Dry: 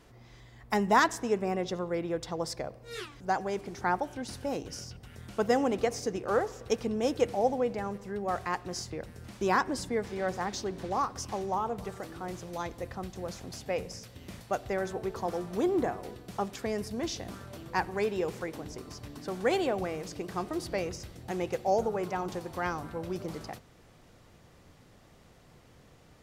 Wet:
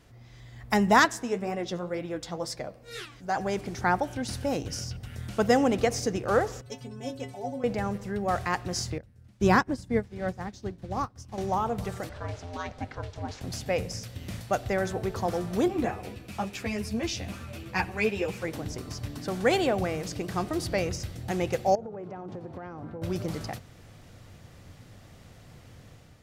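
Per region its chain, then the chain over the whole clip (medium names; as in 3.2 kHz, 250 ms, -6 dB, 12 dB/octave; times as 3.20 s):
1.05–3.37 s: peaking EQ 94 Hz -13 dB 0.63 oct + flange 2 Hz, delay 6.4 ms, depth 6.4 ms, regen +45%
6.61–7.64 s: peaking EQ 160 Hz +6.5 dB 0.67 oct + inharmonic resonator 130 Hz, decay 0.31 s, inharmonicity 0.008
8.98–11.38 s: bass shelf 310 Hz +9 dB + upward expansion 2.5:1, over -39 dBFS
12.09–13.41 s: band-pass 190–5300 Hz + ring modulator 260 Hz
15.68–18.45 s: peaking EQ 2.5 kHz +10.5 dB 0.33 oct + three-phase chorus
21.75–23.02 s: band-pass filter 340 Hz, Q 0.64 + compression, threshold -39 dBFS
whole clip: fifteen-band graphic EQ 100 Hz +7 dB, 400 Hz -4 dB, 1 kHz -4 dB; level rider gain up to 6 dB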